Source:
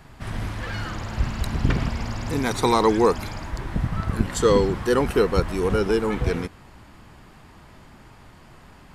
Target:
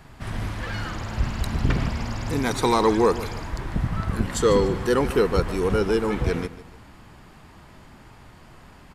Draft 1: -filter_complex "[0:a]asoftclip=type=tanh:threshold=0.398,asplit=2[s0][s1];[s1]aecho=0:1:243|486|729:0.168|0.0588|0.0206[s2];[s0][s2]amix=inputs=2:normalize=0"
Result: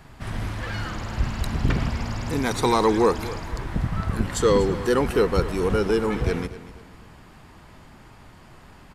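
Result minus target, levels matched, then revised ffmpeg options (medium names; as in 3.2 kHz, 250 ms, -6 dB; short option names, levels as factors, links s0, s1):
echo 96 ms late
-filter_complex "[0:a]asoftclip=type=tanh:threshold=0.398,asplit=2[s0][s1];[s1]aecho=0:1:147|294|441:0.168|0.0588|0.0206[s2];[s0][s2]amix=inputs=2:normalize=0"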